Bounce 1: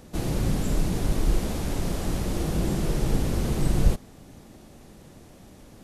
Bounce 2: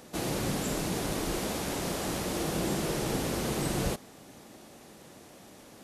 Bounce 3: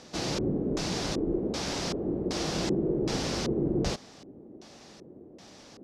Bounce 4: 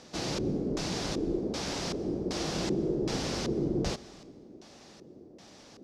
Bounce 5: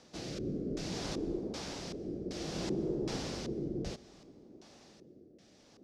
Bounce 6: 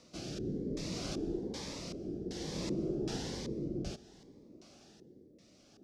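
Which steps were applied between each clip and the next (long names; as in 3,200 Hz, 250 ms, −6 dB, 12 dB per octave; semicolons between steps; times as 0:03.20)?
high-pass filter 420 Hz 6 dB per octave; level +2.5 dB
auto-filter low-pass square 1.3 Hz 380–5,300 Hz
dense smooth reverb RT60 1.8 s, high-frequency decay 0.8×, pre-delay 110 ms, DRR 20 dB; level −2 dB
rotating-speaker cabinet horn 0.6 Hz; level −4.5 dB
phaser whose notches keep moving one way rising 1.1 Hz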